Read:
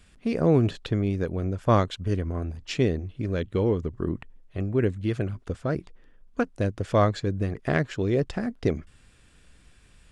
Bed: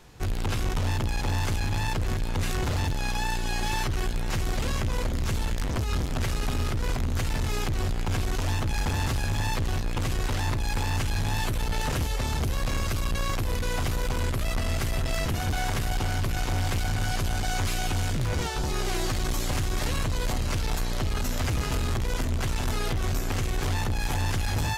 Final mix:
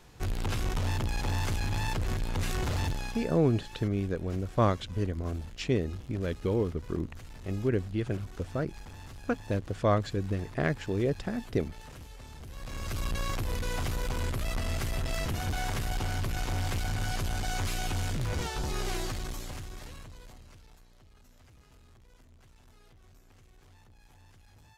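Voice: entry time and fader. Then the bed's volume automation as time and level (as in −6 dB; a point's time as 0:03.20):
2.90 s, −4.5 dB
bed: 0:02.91 −3.5 dB
0:03.43 −19.5 dB
0:12.41 −19.5 dB
0:13.01 −4.5 dB
0:18.92 −4.5 dB
0:20.90 −31 dB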